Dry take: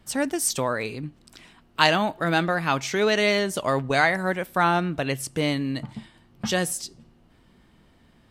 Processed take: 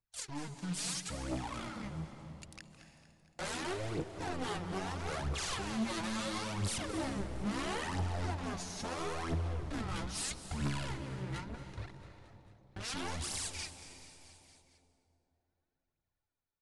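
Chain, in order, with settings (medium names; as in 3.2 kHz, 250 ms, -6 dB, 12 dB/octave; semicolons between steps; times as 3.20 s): self-modulated delay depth 0.74 ms; Doppler pass-by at 3.58 s, 17 m/s, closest 1.9 m; treble shelf 6.5 kHz +6.5 dB; compression 6:1, threshold -44 dBFS, peak gain reduction 22 dB; waveshaping leveller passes 5; level rider gain up to 5.5 dB; hard clipper -35.5 dBFS, distortion -8 dB; phaser 1.5 Hz, delay 3.1 ms, feedback 67%; frequency-shifting echo 112 ms, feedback 60%, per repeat -60 Hz, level -20 dB; on a send at -9 dB: reverberation RT60 1.7 s, pre-delay 88 ms; on the sum: speed mistake 15 ips tape played at 7.5 ips; tape noise reduction on one side only encoder only; trim -3.5 dB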